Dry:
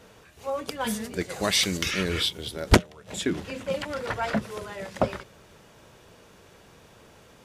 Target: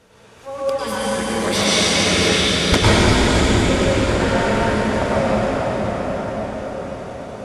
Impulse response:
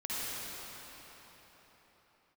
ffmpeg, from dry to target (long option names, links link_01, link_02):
-filter_complex "[1:a]atrim=start_sample=2205,asetrate=22491,aresample=44100[link_01];[0:a][link_01]afir=irnorm=-1:irlink=0"